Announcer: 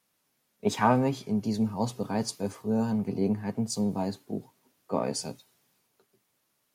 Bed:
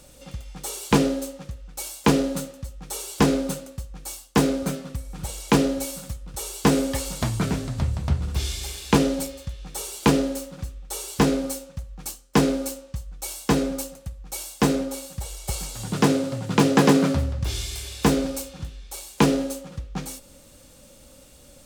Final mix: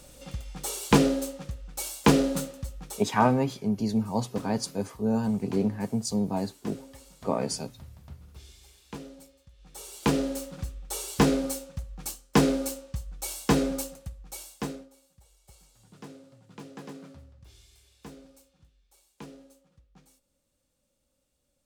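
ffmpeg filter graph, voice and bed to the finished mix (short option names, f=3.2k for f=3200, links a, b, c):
-filter_complex "[0:a]adelay=2350,volume=1dB[a];[1:a]volume=19.5dB,afade=t=out:st=2.78:d=0.26:silence=0.0841395,afade=t=in:st=9.51:d=1:silence=0.0944061,afade=t=out:st=13.78:d=1.11:silence=0.0595662[b];[a][b]amix=inputs=2:normalize=0"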